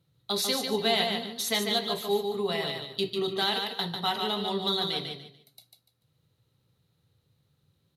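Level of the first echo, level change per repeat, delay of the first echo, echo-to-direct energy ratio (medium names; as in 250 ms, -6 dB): -5.0 dB, -11.5 dB, 146 ms, -4.5 dB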